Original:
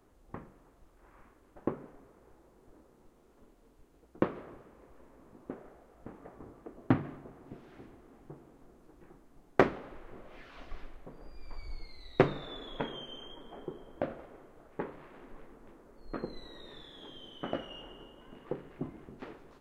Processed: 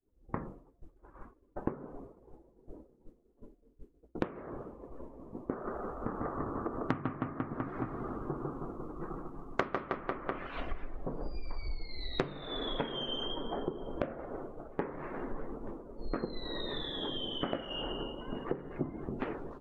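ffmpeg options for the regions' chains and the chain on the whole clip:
ffmpeg -i in.wav -filter_complex "[0:a]asettb=1/sr,asplit=3[link_01][link_02][link_03];[link_01]atrim=end=5.524[link_04];[link_02]atrim=start=5.52:end=10.47,asetpts=PTS-STARTPTS,afade=type=in:duration=0.004:curve=qsin,afade=type=out:start_time=4.946:duration=0.004:curve=qsin,equalizer=frequency=1200:width=2.8:gain=9,aecho=1:1:150|315|496.5|696.2|915.8:0.631|0.398|0.251|0.158|0.1,atrim=end_sample=218295[link_05];[link_03]atrim=start=10.466[link_06];[link_04][link_05]acrossfade=duration=0.004:curve1=hsin:curve2=qsin[link_07];[link_07][link_06]acrossfade=duration=0.004:curve1=qsin:curve2=hsin,afftdn=noise_reduction=18:noise_floor=-59,agate=range=-33dB:threshold=-52dB:ratio=3:detection=peak,acompressor=threshold=-46dB:ratio=6,volume=14dB" out.wav

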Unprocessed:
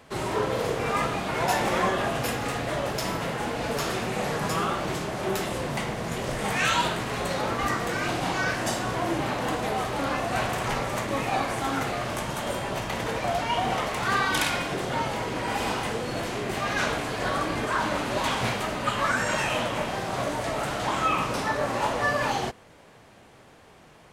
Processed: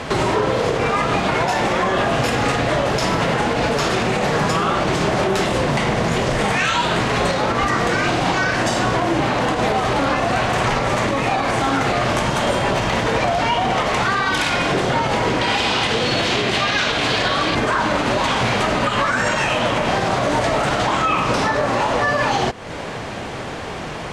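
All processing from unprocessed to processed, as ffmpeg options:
ffmpeg -i in.wav -filter_complex "[0:a]asettb=1/sr,asplit=3[link_01][link_02][link_03];[link_01]atrim=end=15.414[link_04];[link_02]atrim=start=15.41:end=17.55,asetpts=PTS-STARTPTS,afade=type=in:duration=0.004:curve=qsin,afade=type=out:start_time=2.136:duration=0.004:curve=qsin,highpass=41,equalizer=frequency=3600:width_type=o:width=1.4:gain=10[link_05];[link_03]atrim=start=17.546[link_06];[link_04][link_05]acrossfade=duration=0.004:curve1=hsin:curve2=qsin[link_07];[link_07][link_06]acrossfade=duration=0.004:curve1=qsin:curve2=hsin,lowpass=6900,acompressor=threshold=-40dB:ratio=5,alimiter=level_in=32.5dB:limit=-1dB:release=50:level=0:latency=1,volume=-8.5dB" out.wav

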